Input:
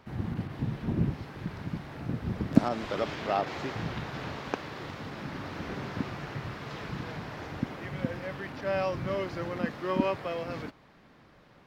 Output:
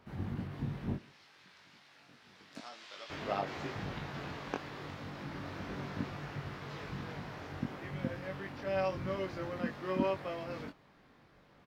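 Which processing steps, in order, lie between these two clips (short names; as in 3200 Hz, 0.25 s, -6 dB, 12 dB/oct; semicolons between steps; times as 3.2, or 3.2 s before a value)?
0.96–3.1 band-pass 4900 Hz, Q 0.82; doubler 21 ms -3.5 dB; gain -6.5 dB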